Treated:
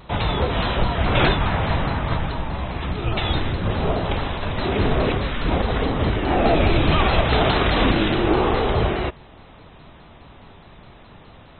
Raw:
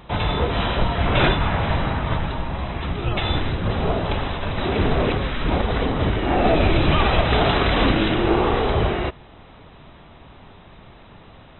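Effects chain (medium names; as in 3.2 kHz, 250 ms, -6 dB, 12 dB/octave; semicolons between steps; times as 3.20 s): vibrato with a chosen wave saw down 4.8 Hz, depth 100 cents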